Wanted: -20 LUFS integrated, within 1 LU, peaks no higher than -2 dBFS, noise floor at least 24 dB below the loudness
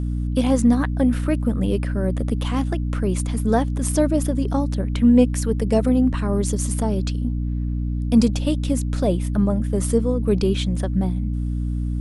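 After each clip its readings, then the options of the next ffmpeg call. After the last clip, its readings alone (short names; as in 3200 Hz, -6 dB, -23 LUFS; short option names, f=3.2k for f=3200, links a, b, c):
hum 60 Hz; harmonics up to 300 Hz; hum level -21 dBFS; loudness -21.5 LUFS; peak -4.0 dBFS; loudness target -20.0 LUFS
-> -af "bandreject=f=60:t=h:w=6,bandreject=f=120:t=h:w=6,bandreject=f=180:t=h:w=6,bandreject=f=240:t=h:w=6,bandreject=f=300:t=h:w=6"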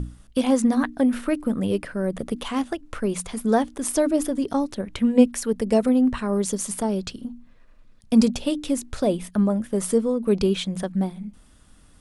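hum none; loudness -23.5 LUFS; peak -3.5 dBFS; loudness target -20.0 LUFS
-> -af "volume=3.5dB,alimiter=limit=-2dB:level=0:latency=1"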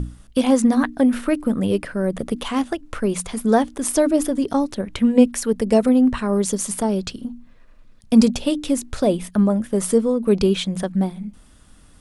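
loudness -20.0 LUFS; peak -2.0 dBFS; noise floor -49 dBFS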